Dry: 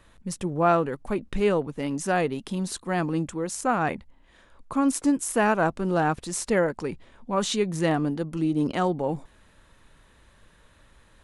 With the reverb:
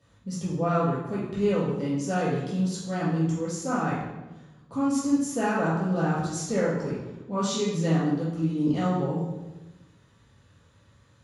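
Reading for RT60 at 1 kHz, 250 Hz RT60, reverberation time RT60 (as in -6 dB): 0.95 s, 1.5 s, 1.1 s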